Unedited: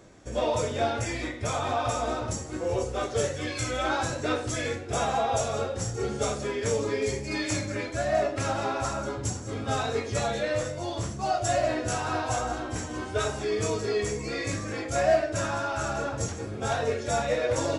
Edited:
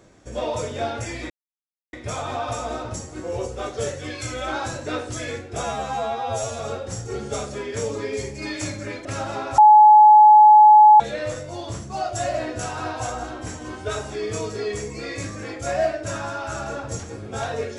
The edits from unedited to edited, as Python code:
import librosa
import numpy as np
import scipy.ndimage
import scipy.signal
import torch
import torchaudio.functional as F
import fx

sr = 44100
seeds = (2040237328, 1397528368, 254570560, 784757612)

y = fx.edit(x, sr, fx.insert_silence(at_s=1.3, length_s=0.63),
    fx.stretch_span(start_s=5.0, length_s=0.48, factor=2.0),
    fx.cut(start_s=7.94, length_s=0.4),
    fx.bleep(start_s=8.87, length_s=1.42, hz=850.0, db=-6.5), tone=tone)